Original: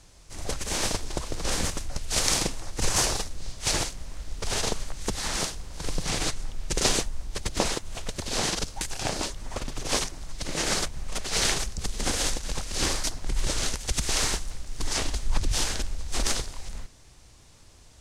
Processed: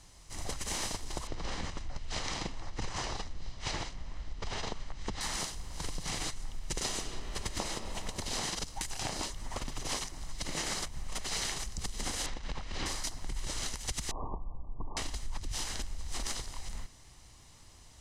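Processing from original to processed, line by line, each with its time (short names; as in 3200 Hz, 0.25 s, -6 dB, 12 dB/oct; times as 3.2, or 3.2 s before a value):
1.27–5.21 air absorption 140 m
6.8–7.68 reverb throw, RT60 2.6 s, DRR 6 dB
12.26–12.86 LPF 3200 Hz
14.11–14.97 brick-wall FIR low-pass 1200 Hz
whole clip: low shelf 230 Hz -3.5 dB; comb 1 ms, depth 31%; compressor, threshold -30 dBFS; gain -2 dB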